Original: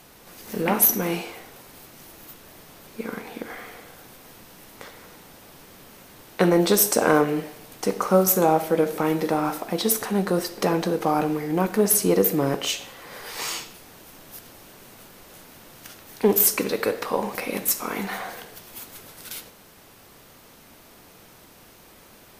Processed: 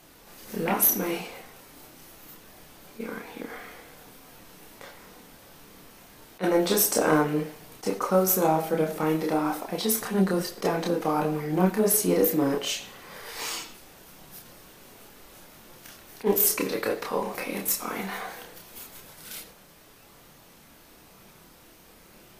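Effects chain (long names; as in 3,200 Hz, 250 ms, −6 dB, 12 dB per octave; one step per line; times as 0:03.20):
multi-voice chorus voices 6, 0.18 Hz, delay 29 ms, depth 3.7 ms
level that may rise only so fast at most 430 dB per second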